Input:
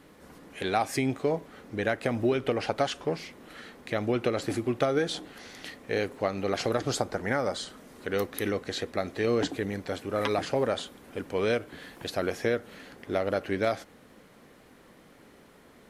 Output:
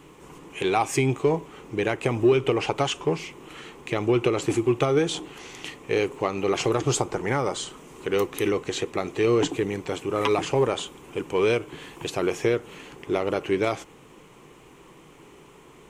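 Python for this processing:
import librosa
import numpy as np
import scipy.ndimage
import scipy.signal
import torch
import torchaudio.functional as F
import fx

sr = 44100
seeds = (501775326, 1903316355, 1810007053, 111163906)

p1 = fx.ripple_eq(x, sr, per_octave=0.7, db=10)
p2 = np.clip(p1, -10.0 ** (-22.0 / 20.0), 10.0 ** (-22.0 / 20.0))
p3 = p1 + F.gain(torch.from_numpy(p2), -11.0).numpy()
y = F.gain(torch.from_numpy(p3), 2.0).numpy()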